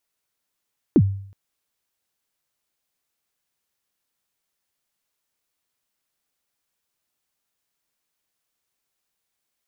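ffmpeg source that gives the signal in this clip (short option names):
-f lavfi -i "aevalsrc='0.398*pow(10,-3*t/0.59)*sin(2*PI*(380*0.055/log(98/380)*(exp(log(98/380)*min(t,0.055)/0.055)-1)+98*max(t-0.055,0)))':d=0.37:s=44100"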